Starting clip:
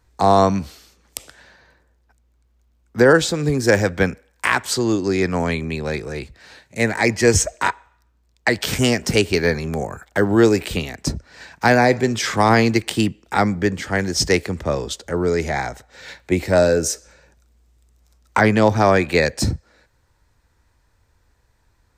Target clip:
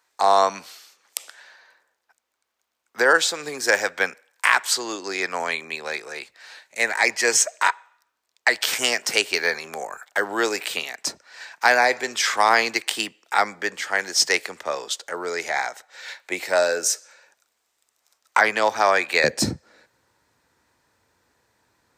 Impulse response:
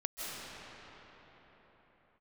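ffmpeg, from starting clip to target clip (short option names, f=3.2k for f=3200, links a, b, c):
-af "asetnsamples=n=441:p=0,asendcmd='19.24 highpass f 200',highpass=800,volume=1.5dB"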